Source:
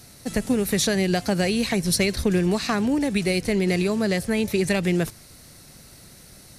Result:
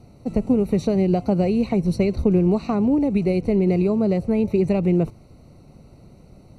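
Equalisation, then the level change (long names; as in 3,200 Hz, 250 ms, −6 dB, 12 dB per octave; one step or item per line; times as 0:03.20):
moving average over 26 samples
+4.0 dB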